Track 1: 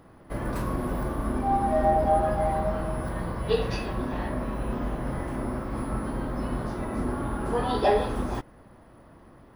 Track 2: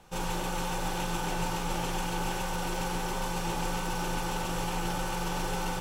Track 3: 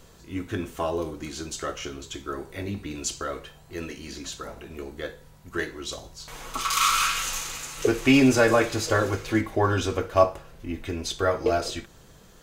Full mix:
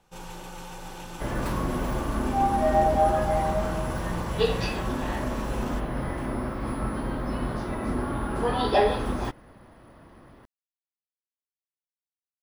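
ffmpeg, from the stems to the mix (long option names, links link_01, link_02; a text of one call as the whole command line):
ffmpeg -i stem1.wav -i stem2.wav -filter_complex "[0:a]equalizer=frequency=3200:width=0.64:gain=4,adelay=900,volume=0.5dB[link_01];[1:a]volume=-8dB[link_02];[link_01][link_02]amix=inputs=2:normalize=0" out.wav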